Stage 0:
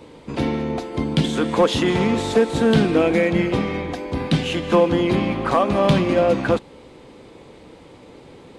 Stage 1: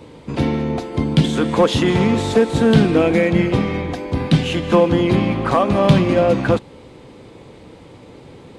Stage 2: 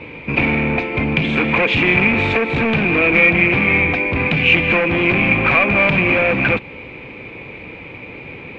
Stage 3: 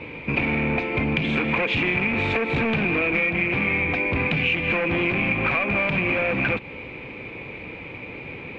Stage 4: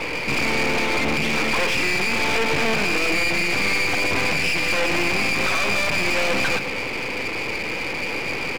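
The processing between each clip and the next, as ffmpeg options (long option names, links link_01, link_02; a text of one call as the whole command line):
ffmpeg -i in.wav -af "equalizer=frequency=110:width=0.97:gain=6,volume=1.5dB" out.wav
ffmpeg -i in.wav -af "acompressor=threshold=-15dB:ratio=4,volume=20dB,asoftclip=hard,volume=-20dB,lowpass=frequency=2400:width_type=q:width=15,volume=4dB" out.wav
ffmpeg -i in.wav -af "acompressor=threshold=-17dB:ratio=6,volume=-2.5dB" out.wav
ffmpeg -i in.wav -filter_complex "[0:a]asplit=2[link_01][link_02];[link_02]highpass=frequency=720:poles=1,volume=25dB,asoftclip=type=tanh:threshold=-8.5dB[link_03];[link_01][link_03]amix=inputs=2:normalize=0,lowpass=frequency=2000:poles=1,volume=-6dB,aecho=1:1:119:0.299,aeval=exprs='clip(val(0),-1,0.0188)':channel_layout=same" out.wav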